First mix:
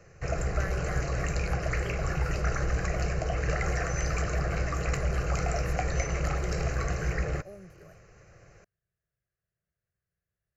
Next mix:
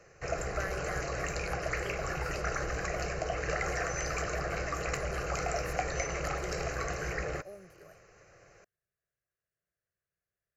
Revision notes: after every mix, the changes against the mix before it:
background: add high-shelf EQ 5,300 Hz −4.5 dB
master: add bass and treble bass −10 dB, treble +3 dB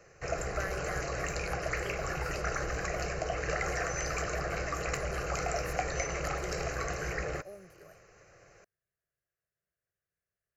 master: add high-shelf EQ 9,600 Hz +3 dB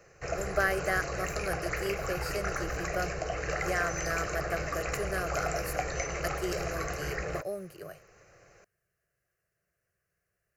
speech +11.5 dB

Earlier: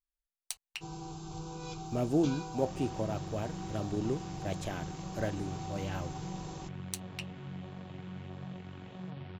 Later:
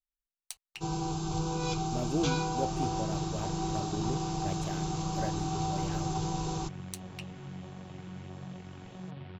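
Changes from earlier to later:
speech −3.5 dB
first sound +10.0 dB

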